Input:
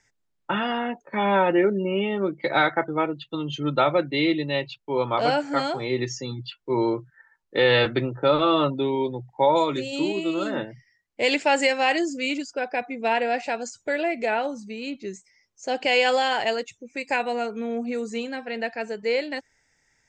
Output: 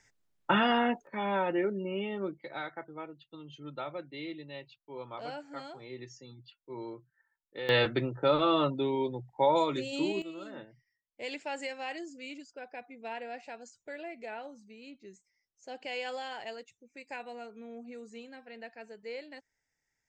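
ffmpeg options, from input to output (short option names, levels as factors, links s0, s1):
-af "asetnsamples=n=441:p=0,asendcmd='1.07 volume volume -10dB;2.38 volume volume -18.5dB;7.69 volume volume -6dB;10.22 volume volume -17dB',volume=1"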